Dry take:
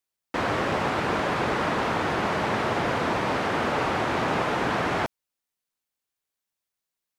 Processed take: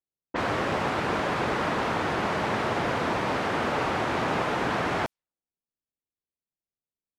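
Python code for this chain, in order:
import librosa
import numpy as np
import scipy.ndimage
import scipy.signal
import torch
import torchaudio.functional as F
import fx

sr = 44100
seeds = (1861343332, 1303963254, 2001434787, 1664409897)

y = fx.env_lowpass(x, sr, base_hz=420.0, full_db=-24.0)
y = y * librosa.db_to_amplitude(-1.5)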